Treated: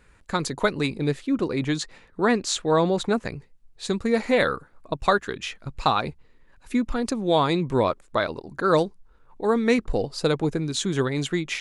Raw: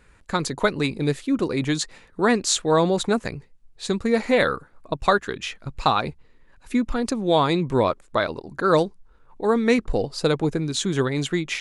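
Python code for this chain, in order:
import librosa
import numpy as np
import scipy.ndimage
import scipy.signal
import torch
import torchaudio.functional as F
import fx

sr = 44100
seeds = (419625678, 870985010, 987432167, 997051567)

y = fx.high_shelf(x, sr, hz=7200.0, db=-9.0, at=(0.97, 3.3))
y = F.gain(torch.from_numpy(y), -1.5).numpy()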